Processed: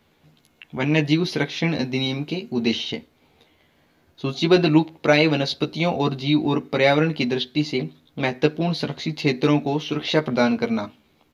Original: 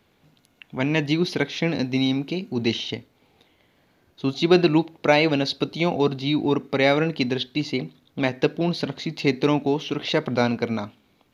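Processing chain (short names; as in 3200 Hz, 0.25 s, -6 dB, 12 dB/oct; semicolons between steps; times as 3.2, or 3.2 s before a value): doubler 13 ms -3.5 dB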